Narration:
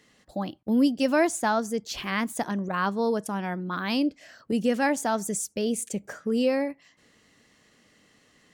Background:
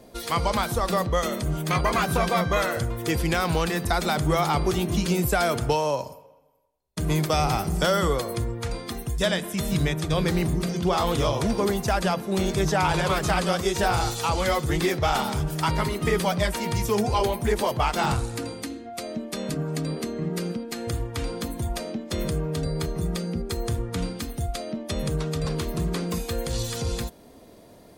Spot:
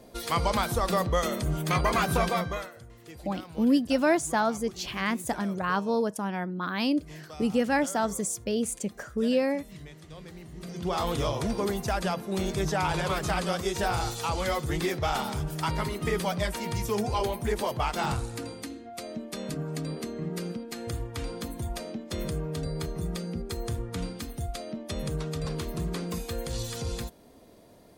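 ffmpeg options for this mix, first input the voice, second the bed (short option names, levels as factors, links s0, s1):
-filter_complex "[0:a]adelay=2900,volume=0.891[s0];[1:a]volume=5.31,afade=t=out:st=2.21:d=0.5:silence=0.105925,afade=t=in:st=10.52:d=0.48:silence=0.149624[s1];[s0][s1]amix=inputs=2:normalize=0"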